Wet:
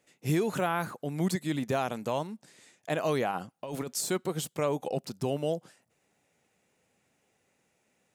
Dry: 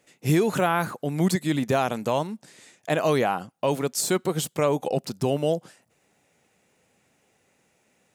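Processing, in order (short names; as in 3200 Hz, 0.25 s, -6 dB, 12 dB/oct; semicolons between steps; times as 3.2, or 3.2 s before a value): 3.31–3.98 negative-ratio compressor -28 dBFS, ratio -1; gain -6.5 dB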